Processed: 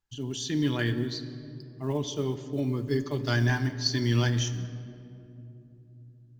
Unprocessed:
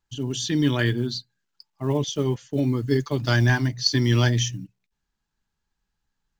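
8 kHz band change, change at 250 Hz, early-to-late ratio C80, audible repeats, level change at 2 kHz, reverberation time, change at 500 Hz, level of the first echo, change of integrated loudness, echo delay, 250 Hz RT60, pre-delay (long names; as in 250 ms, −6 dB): −5.5 dB, −5.0 dB, 12.5 dB, no echo audible, −6.0 dB, 2.9 s, −5.0 dB, no echo audible, −5.5 dB, no echo audible, 4.4 s, 3 ms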